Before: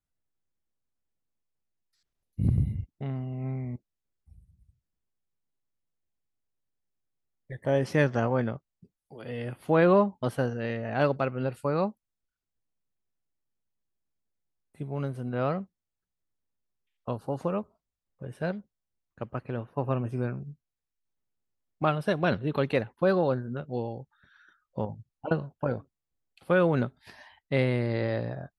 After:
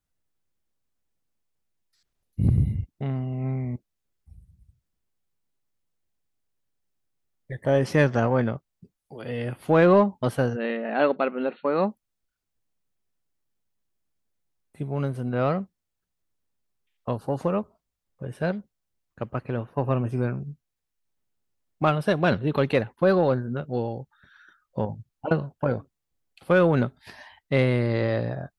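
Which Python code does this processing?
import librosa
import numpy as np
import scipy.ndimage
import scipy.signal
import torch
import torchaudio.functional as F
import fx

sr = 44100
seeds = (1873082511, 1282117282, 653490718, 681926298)

p1 = 10.0 ** (-23.0 / 20.0) * np.tanh(x / 10.0 ** (-23.0 / 20.0))
p2 = x + F.gain(torch.from_numpy(p1), -7.5).numpy()
p3 = fx.brickwall_bandpass(p2, sr, low_hz=170.0, high_hz=4400.0, at=(10.55, 11.89), fade=0.02)
y = F.gain(torch.from_numpy(p3), 2.0).numpy()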